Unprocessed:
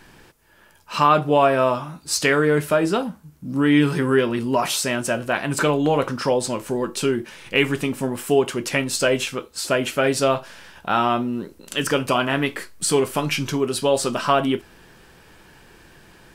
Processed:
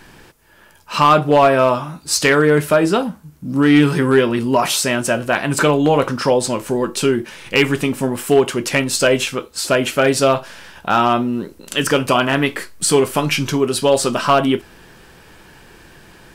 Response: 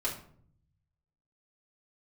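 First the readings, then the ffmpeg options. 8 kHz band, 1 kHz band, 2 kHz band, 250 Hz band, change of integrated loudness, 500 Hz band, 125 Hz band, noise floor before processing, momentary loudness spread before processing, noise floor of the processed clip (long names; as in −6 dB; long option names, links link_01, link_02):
+5.0 dB, +4.5 dB, +4.5 dB, +5.0 dB, +5.0 dB, +5.0 dB, +5.0 dB, −52 dBFS, 9 LU, −47 dBFS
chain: -af "volume=9.5dB,asoftclip=hard,volume=-9.5dB,volume=5dB"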